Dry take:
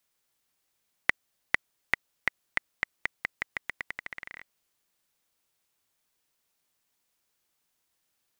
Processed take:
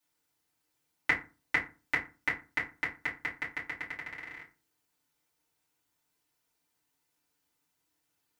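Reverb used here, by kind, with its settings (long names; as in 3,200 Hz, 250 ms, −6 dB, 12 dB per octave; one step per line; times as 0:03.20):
feedback delay network reverb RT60 0.32 s, low-frequency decay 1.35×, high-frequency decay 0.6×, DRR −8 dB
level −9 dB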